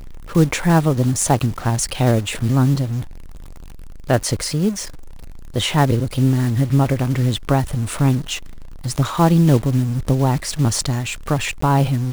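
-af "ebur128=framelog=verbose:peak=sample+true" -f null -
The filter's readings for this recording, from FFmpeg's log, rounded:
Integrated loudness:
  I:         -18.7 LUFS
  Threshold: -29.2 LUFS
Loudness range:
  LRA:         3.9 LU
  Threshold: -39.5 LUFS
  LRA low:   -22.1 LUFS
  LRA high:  -18.3 LUFS
Sample peak:
  Peak:       -2.4 dBFS
True peak:
  Peak:       -2.3 dBFS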